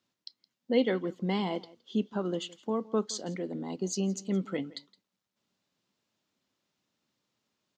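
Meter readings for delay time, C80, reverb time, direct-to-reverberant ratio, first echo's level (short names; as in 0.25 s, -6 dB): 0.167 s, none, none, none, -21.5 dB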